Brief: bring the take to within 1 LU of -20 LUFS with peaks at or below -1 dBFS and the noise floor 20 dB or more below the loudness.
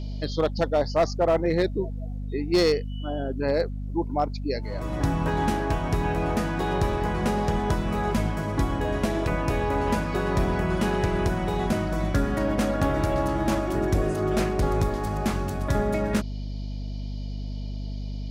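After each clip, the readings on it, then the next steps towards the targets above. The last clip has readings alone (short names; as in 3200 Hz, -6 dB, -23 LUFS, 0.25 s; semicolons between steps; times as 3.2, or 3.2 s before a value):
clipped 0.5%; flat tops at -15.0 dBFS; hum 50 Hz; harmonics up to 250 Hz; hum level -29 dBFS; loudness -26.5 LUFS; peak -15.0 dBFS; loudness target -20.0 LUFS
-> clip repair -15 dBFS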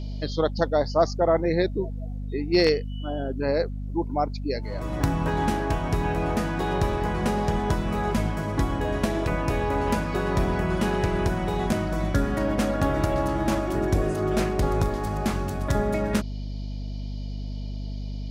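clipped 0.0%; hum 50 Hz; harmonics up to 250 Hz; hum level -29 dBFS
-> notches 50/100/150/200/250 Hz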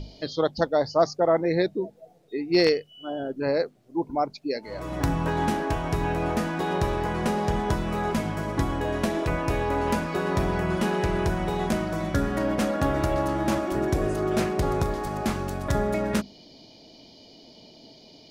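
hum none; loudness -26.5 LUFS; peak -6.0 dBFS; loudness target -20.0 LUFS
-> gain +6.5 dB; limiter -1 dBFS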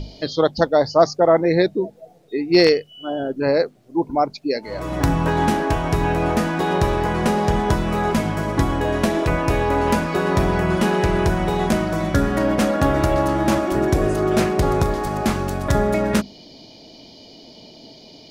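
loudness -20.0 LUFS; peak -1.0 dBFS; noise floor -45 dBFS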